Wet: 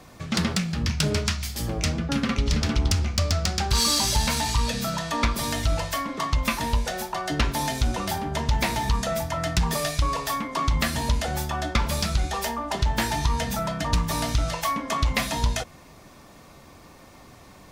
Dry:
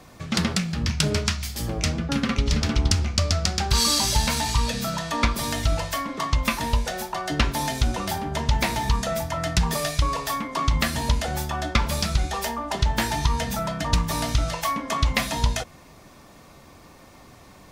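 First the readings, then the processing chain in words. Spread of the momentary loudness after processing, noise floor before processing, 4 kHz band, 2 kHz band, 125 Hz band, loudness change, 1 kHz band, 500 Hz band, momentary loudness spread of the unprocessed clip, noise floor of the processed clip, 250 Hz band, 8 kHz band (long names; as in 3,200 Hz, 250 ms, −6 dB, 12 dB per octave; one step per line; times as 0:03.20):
4 LU, −49 dBFS, −1.5 dB, −1.0 dB, −1.0 dB, −1.0 dB, −0.5 dB, −0.5 dB, 5 LU, −49 dBFS, −0.5 dB, −1.0 dB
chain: soft clipping −12 dBFS, distortion −19 dB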